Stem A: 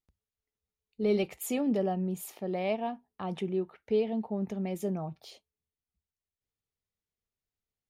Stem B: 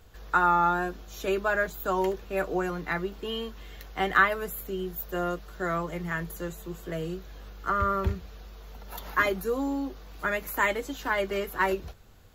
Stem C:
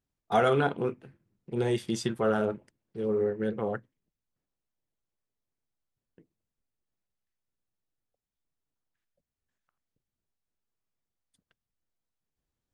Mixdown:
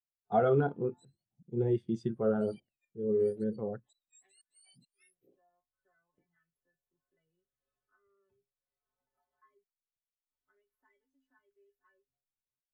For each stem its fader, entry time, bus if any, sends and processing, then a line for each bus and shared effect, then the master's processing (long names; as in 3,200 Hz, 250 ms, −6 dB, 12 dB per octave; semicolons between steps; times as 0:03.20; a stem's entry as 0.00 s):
−7.0 dB, 0.00 s, bus A, no send, frequency axis turned over on the octave scale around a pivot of 1,300 Hz; low-shelf EQ 270 Hz −5 dB
−19.0 dB, 0.25 s, muted 0:09.64–0:10.31, bus A, no send, stiff-string resonator 130 Hz, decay 0.33 s, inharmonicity 0.008; multiband upward and downward compressor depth 70%
−4.5 dB, 0.00 s, no bus, no send, spectral tilt −1.5 dB per octave
bus A: 0.0 dB, gate with flip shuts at −34 dBFS, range −30 dB; brickwall limiter −43 dBFS, peak gain reduction 9.5 dB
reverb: not used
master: every bin expanded away from the loudest bin 1.5 to 1